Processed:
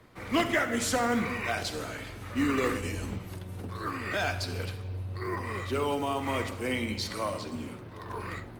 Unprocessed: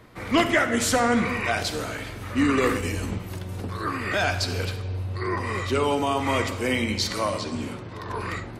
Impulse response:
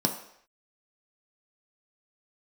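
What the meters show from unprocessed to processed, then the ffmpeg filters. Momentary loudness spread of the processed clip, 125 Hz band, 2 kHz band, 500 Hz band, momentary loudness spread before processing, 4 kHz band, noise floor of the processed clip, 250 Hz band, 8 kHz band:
12 LU, -6.0 dB, -6.0 dB, -6.0 dB, 11 LU, -7.0 dB, -44 dBFS, -6.0 dB, -6.5 dB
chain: -filter_complex "[0:a]acrossover=split=190[a][b];[b]acrusher=bits=6:mode=log:mix=0:aa=0.000001[c];[a][c]amix=inputs=2:normalize=0,volume=-6dB" -ar 48000 -c:a libopus -b:a 48k

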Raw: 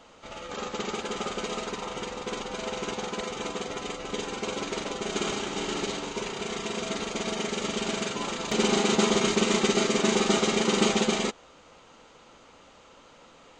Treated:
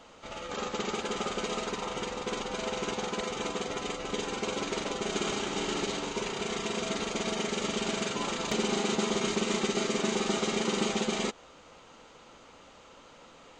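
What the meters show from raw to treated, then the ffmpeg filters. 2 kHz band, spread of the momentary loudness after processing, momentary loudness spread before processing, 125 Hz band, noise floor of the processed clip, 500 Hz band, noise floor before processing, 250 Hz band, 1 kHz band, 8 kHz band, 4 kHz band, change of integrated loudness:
-3.0 dB, 6 LU, 11 LU, -3.5 dB, -54 dBFS, -3.5 dB, -54 dBFS, -4.0 dB, -2.5 dB, -3.5 dB, -3.5 dB, -3.5 dB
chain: -af "acompressor=threshold=-27dB:ratio=3"

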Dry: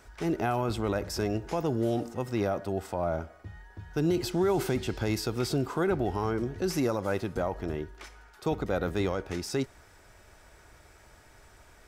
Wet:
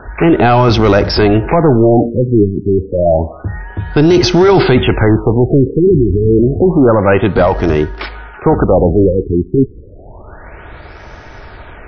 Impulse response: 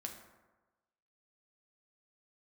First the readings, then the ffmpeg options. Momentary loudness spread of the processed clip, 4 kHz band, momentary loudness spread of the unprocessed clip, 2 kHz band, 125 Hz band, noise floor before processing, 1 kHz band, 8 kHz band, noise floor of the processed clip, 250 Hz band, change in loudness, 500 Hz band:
8 LU, +18.0 dB, 9 LU, +18.0 dB, +20.5 dB, -56 dBFS, +18.5 dB, n/a, -34 dBFS, +19.5 dB, +19.5 dB, +19.5 dB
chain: -af "apsyclip=26.5dB,adynamicsmooth=sensitivity=2:basefreq=3.3k,afftfilt=real='re*lt(b*sr/1024,420*pow(6500/420,0.5+0.5*sin(2*PI*0.29*pts/sr)))':imag='im*lt(b*sr/1024,420*pow(6500/420,0.5+0.5*sin(2*PI*0.29*pts/sr)))':win_size=1024:overlap=0.75,volume=-3dB"

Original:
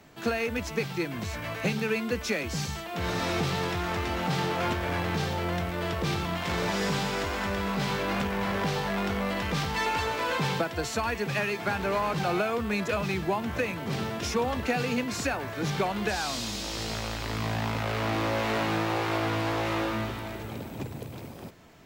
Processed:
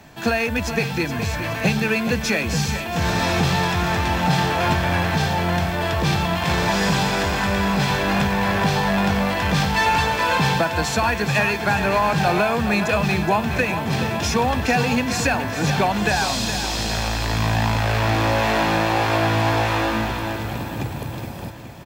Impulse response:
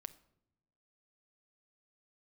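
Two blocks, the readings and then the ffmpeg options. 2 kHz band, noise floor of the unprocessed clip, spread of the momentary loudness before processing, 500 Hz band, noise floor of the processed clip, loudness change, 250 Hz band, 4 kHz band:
+10.0 dB, -40 dBFS, 5 LU, +7.0 dB, -29 dBFS, +9.0 dB, +8.5 dB, +9.0 dB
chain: -af "aecho=1:1:1.2:0.35,aecho=1:1:419|838|1257|1676|2095|2514:0.316|0.171|0.0922|0.0498|0.0269|0.0145,volume=8dB"

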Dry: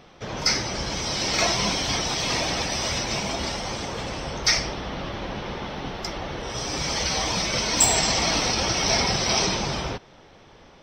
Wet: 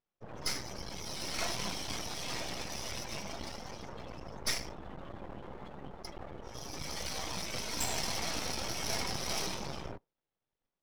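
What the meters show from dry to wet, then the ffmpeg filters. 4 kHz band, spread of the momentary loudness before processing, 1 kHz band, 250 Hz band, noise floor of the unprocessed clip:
-14.5 dB, 12 LU, -14.0 dB, -14.0 dB, -51 dBFS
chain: -af "afftdn=nr=30:nf=-32,aresample=16000,aresample=44100,aeval=exprs='max(val(0),0)':c=same,volume=-8.5dB"

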